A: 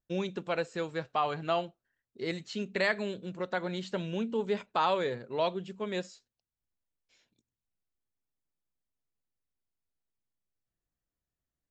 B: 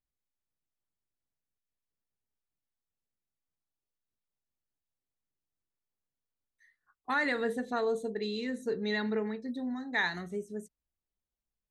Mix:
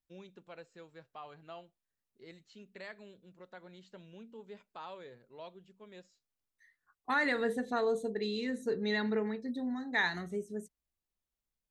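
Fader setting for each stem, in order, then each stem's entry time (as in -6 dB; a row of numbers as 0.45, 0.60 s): -18.5, -0.5 dB; 0.00, 0.00 s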